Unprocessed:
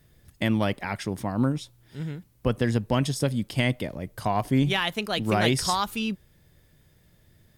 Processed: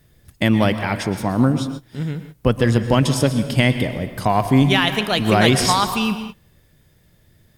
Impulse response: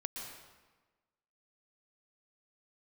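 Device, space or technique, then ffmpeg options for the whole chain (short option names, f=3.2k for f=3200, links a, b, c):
keyed gated reverb: -filter_complex "[0:a]asplit=3[a][b][c];[1:a]atrim=start_sample=2205[d];[b][d]afir=irnorm=-1:irlink=0[e];[c]apad=whole_len=334226[f];[e][f]sidechaingate=range=-25dB:threshold=-50dB:ratio=16:detection=peak,volume=-1.5dB[g];[a][g]amix=inputs=2:normalize=0,volume=3.5dB"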